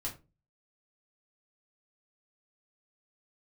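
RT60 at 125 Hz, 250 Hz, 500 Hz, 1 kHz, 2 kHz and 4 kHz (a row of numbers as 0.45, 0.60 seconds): 0.50, 0.45, 0.35, 0.25, 0.20, 0.20 seconds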